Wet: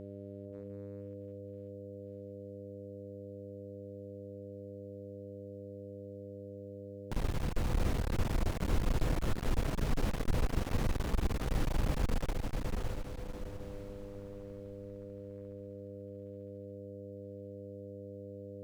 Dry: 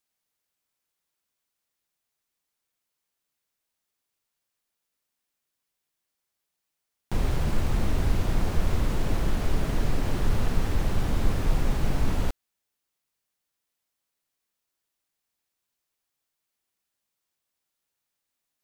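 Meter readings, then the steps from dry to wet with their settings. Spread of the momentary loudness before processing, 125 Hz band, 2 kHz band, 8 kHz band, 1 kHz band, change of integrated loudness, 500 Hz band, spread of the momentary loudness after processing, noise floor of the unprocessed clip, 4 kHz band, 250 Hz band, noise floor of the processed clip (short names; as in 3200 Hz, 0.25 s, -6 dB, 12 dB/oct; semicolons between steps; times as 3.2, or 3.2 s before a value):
2 LU, -6.0 dB, -6.0 dB, -5.5 dB, -5.5 dB, -10.5 dB, -1.5 dB, 12 LU, -83 dBFS, -5.5 dB, -4.5 dB, -46 dBFS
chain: buzz 100 Hz, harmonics 6, -40 dBFS -1 dB/oct; diffused feedback echo 0.612 s, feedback 40%, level -3 dB; one-sided clip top -32 dBFS; gain -5.5 dB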